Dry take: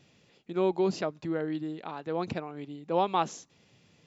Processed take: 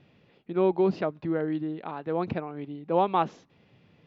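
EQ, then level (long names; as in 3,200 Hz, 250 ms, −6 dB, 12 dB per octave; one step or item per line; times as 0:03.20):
high-frequency loss of the air 320 metres
+4.0 dB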